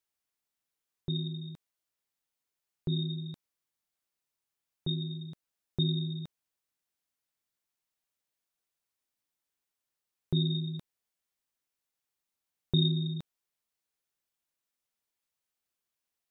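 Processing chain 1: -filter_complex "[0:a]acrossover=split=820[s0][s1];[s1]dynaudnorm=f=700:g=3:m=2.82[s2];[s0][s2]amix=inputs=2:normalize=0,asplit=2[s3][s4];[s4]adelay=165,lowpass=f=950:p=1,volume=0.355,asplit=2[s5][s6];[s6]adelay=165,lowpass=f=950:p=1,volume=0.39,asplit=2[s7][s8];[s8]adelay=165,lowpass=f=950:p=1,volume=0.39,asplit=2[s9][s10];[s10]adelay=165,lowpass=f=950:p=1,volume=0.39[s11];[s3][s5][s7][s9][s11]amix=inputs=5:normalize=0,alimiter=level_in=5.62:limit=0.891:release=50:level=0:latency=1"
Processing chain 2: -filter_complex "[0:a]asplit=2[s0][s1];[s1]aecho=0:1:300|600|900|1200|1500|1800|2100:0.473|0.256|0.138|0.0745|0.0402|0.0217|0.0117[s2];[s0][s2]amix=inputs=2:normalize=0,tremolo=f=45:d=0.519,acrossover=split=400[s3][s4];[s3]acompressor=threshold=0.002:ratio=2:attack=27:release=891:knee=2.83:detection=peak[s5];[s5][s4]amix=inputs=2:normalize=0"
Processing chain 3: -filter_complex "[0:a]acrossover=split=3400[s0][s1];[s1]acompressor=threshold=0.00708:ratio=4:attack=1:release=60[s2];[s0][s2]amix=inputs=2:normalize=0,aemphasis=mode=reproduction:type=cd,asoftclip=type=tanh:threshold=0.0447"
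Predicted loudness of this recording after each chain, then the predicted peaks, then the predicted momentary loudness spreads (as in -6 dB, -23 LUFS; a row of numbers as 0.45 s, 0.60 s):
-15.5 LUFS, -41.5 LUFS, -37.0 LUFS; -1.0 dBFS, -22.0 dBFS, -27.0 dBFS; 17 LU, 21 LU, 14 LU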